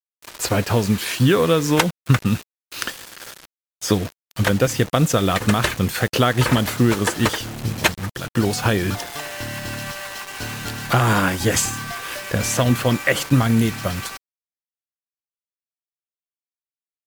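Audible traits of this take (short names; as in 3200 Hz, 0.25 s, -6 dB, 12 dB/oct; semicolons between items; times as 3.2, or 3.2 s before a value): a quantiser's noise floor 6-bit, dither none; MP3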